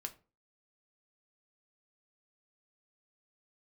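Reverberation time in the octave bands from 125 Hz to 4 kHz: 0.40 s, 0.40 s, 0.40 s, 0.35 s, 0.25 s, 0.20 s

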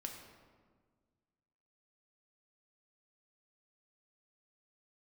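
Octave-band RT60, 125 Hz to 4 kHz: 2.1 s, 2.0 s, 1.7 s, 1.5 s, 1.2 s, 0.95 s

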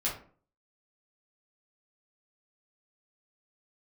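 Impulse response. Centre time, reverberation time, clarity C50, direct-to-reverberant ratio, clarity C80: 30 ms, 0.45 s, 6.5 dB, -6.5 dB, 12.0 dB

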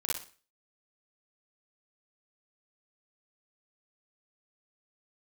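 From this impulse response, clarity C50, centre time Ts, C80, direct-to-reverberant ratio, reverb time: -2.5 dB, 51 ms, 9.5 dB, -6.0 dB, no single decay rate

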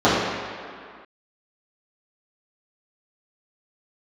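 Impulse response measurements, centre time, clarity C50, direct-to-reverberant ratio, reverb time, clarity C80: 115 ms, -1.0 dB, -12.5 dB, 2.1 s, 1.0 dB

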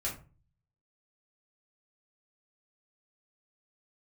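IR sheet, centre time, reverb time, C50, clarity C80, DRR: 24 ms, 0.35 s, 8.5 dB, 15.0 dB, -5.5 dB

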